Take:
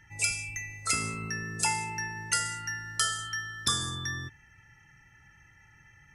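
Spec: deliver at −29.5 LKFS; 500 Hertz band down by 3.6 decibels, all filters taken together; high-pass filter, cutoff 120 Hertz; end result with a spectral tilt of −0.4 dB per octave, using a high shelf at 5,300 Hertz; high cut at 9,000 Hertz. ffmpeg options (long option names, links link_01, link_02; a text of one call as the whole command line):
ffmpeg -i in.wav -af "highpass=120,lowpass=9000,equalizer=frequency=500:width_type=o:gain=-5,highshelf=frequency=5300:gain=5,volume=0.5dB" out.wav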